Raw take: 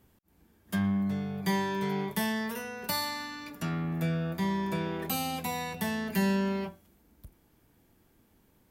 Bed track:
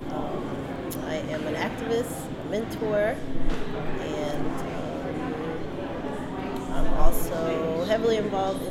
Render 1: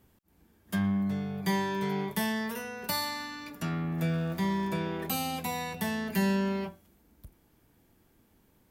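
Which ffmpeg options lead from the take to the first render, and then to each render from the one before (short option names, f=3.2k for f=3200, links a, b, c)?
-filter_complex "[0:a]asettb=1/sr,asplit=3[a][b][c];[a]atrim=end=3.984[d];[b]atrim=start=3.98:end=4.68,asetpts=PTS-STARTPTS,afade=t=in:d=0.004:c=qsin,afade=t=out:st=0.696:d=0.004:c=qsin,aeval=exprs='val(0)+0.5*0.00531*sgn(val(0))':c=same[e];[c]atrim=start=4.676[f];[d][e]acrossfade=d=0.004:c1=hsin:c2=qsin[g];[g][f]acrossfade=d=0.004:c1=qsin:c2=hsin"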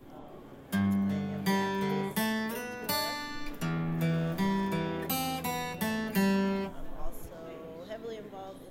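-filter_complex "[1:a]volume=-17.5dB[a];[0:a][a]amix=inputs=2:normalize=0"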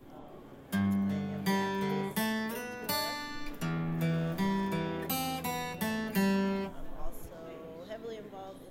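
-af "volume=-1.5dB"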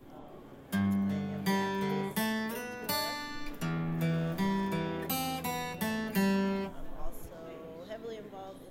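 -af anull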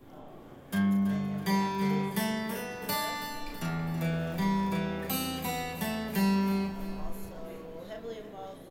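-filter_complex "[0:a]asplit=2[a][b];[b]adelay=35,volume=-5dB[c];[a][c]amix=inputs=2:normalize=0,asplit=2[d][e];[e]aecho=0:1:328|656|984|1312|1640:0.251|0.123|0.0603|0.0296|0.0145[f];[d][f]amix=inputs=2:normalize=0"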